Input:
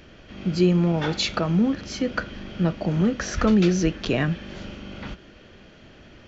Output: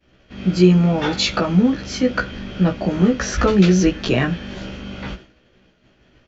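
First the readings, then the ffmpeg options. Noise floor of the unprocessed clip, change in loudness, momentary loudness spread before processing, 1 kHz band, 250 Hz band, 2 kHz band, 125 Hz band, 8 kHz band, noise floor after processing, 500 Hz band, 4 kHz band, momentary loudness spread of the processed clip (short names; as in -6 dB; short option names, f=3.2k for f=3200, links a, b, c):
-49 dBFS, +5.5 dB, 18 LU, +5.5 dB, +5.0 dB, +5.5 dB, +5.5 dB, n/a, -58 dBFS, +5.5 dB, +5.5 dB, 18 LU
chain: -filter_complex "[0:a]agate=range=-33dB:threshold=-38dB:ratio=3:detection=peak,asplit=2[a][b];[b]adelay=16,volume=-2dB[c];[a][c]amix=inputs=2:normalize=0,volume=3.5dB"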